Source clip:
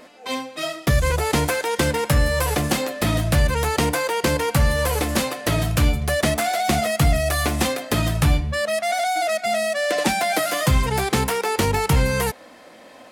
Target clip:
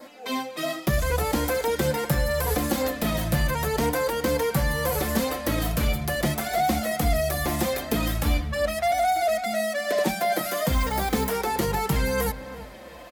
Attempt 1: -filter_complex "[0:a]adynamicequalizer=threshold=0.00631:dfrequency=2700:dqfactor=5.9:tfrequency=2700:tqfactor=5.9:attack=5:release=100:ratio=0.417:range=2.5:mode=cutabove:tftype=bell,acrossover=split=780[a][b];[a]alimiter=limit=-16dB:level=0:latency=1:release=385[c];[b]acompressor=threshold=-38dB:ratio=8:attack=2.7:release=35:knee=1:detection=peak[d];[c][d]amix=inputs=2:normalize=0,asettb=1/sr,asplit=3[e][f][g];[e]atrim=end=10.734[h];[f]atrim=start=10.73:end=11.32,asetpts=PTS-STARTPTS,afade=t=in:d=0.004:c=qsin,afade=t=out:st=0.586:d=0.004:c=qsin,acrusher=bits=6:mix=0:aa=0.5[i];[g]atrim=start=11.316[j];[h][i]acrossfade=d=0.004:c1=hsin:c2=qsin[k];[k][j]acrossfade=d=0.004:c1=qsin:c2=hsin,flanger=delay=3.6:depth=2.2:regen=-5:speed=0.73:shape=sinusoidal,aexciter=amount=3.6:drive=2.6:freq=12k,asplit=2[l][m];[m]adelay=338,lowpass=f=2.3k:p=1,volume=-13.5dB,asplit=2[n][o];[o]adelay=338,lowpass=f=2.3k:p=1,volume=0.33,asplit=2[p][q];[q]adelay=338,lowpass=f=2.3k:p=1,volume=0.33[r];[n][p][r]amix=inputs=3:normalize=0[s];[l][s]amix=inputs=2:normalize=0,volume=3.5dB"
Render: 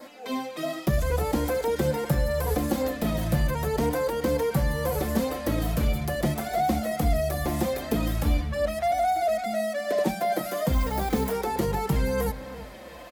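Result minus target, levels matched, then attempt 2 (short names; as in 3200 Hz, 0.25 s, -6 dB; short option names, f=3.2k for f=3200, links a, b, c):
compressor: peak gain reduction +6.5 dB
-filter_complex "[0:a]adynamicequalizer=threshold=0.00631:dfrequency=2700:dqfactor=5.9:tfrequency=2700:tqfactor=5.9:attack=5:release=100:ratio=0.417:range=2.5:mode=cutabove:tftype=bell,acrossover=split=780[a][b];[a]alimiter=limit=-16dB:level=0:latency=1:release=385[c];[b]acompressor=threshold=-30.5dB:ratio=8:attack=2.7:release=35:knee=1:detection=peak[d];[c][d]amix=inputs=2:normalize=0,asettb=1/sr,asplit=3[e][f][g];[e]atrim=end=10.734[h];[f]atrim=start=10.73:end=11.32,asetpts=PTS-STARTPTS,afade=t=in:d=0.004:c=qsin,afade=t=out:st=0.586:d=0.004:c=qsin,acrusher=bits=6:mix=0:aa=0.5[i];[g]atrim=start=11.316[j];[h][i]acrossfade=d=0.004:c1=hsin:c2=qsin[k];[k][j]acrossfade=d=0.004:c1=qsin:c2=hsin,flanger=delay=3.6:depth=2.2:regen=-5:speed=0.73:shape=sinusoidal,aexciter=amount=3.6:drive=2.6:freq=12k,asplit=2[l][m];[m]adelay=338,lowpass=f=2.3k:p=1,volume=-13.5dB,asplit=2[n][o];[o]adelay=338,lowpass=f=2.3k:p=1,volume=0.33,asplit=2[p][q];[q]adelay=338,lowpass=f=2.3k:p=1,volume=0.33[r];[n][p][r]amix=inputs=3:normalize=0[s];[l][s]amix=inputs=2:normalize=0,volume=3.5dB"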